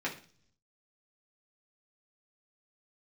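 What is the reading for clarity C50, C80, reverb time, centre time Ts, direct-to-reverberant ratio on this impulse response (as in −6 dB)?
11.0 dB, 16.0 dB, 0.45 s, 16 ms, −5.0 dB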